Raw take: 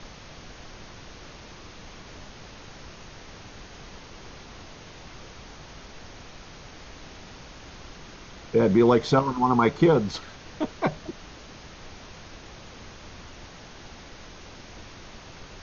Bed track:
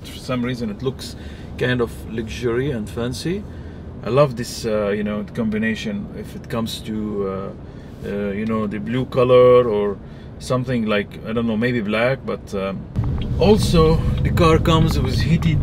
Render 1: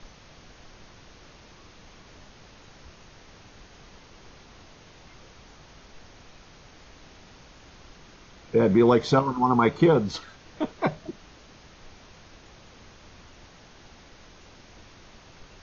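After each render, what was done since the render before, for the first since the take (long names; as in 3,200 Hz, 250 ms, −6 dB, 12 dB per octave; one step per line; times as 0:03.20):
noise reduction from a noise print 6 dB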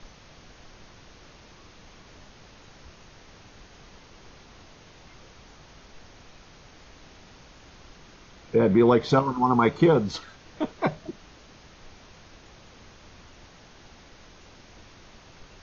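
0:08.56–0:09.10: low-pass filter 4,700 Hz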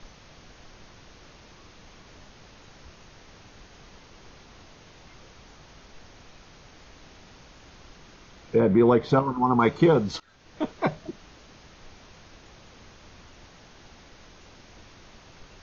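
0:08.60–0:09.60: high-shelf EQ 3,200 Hz −10 dB
0:10.20–0:10.64: fade in, from −20.5 dB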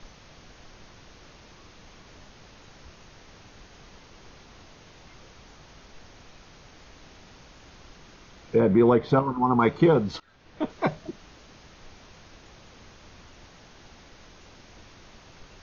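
0:08.89–0:10.70: high-frequency loss of the air 94 metres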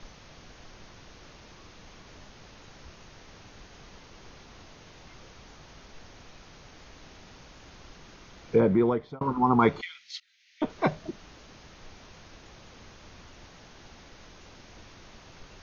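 0:08.55–0:09.21: fade out
0:09.81–0:10.62: elliptic high-pass filter 2,000 Hz, stop band 60 dB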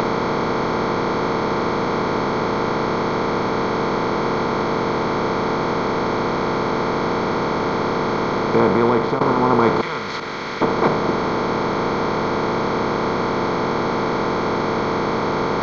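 compressor on every frequency bin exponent 0.2
upward compression, threshold −21 dBFS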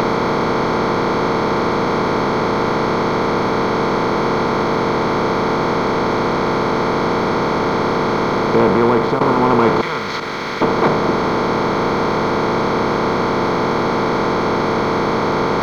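leveller curve on the samples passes 1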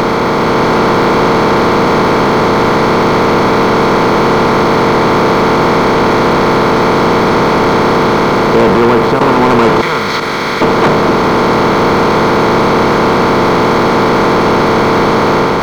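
leveller curve on the samples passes 2
automatic gain control gain up to 3.5 dB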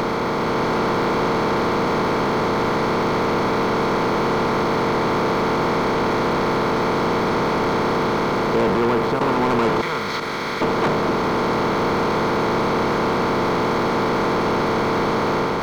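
level −10.5 dB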